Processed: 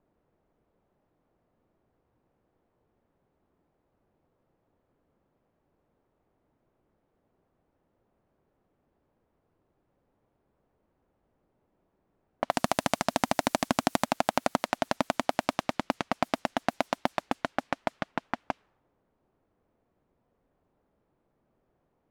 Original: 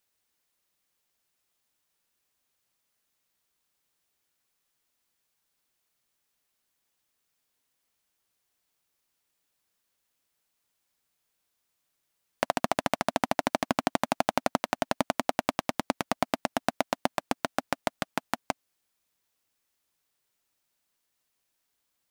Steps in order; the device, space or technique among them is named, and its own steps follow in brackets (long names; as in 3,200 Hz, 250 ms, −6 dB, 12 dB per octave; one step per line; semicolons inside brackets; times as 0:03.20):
cassette deck with a dynamic noise filter (white noise bed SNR 23 dB; low-pass that shuts in the quiet parts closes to 510 Hz, open at −26 dBFS)
0:12.54–0:14.05: bass and treble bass +3 dB, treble +5 dB